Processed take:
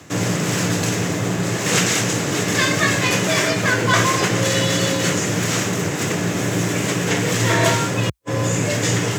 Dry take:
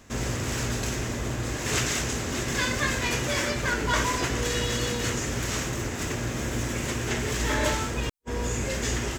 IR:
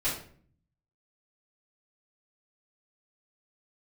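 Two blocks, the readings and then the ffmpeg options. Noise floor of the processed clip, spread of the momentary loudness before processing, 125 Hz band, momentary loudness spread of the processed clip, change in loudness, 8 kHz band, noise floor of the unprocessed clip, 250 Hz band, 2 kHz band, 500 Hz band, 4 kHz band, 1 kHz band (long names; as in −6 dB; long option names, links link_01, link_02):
−24 dBFS, 5 LU, +9.0 dB, 5 LU, +9.0 dB, +8.5 dB, −32 dBFS, +10.0 dB, +8.5 dB, +9.5 dB, +8.5 dB, +8.5 dB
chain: -af "afreqshift=57,areverse,acompressor=mode=upward:threshold=-30dB:ratio=2.5,areverse,volume=8.5dB"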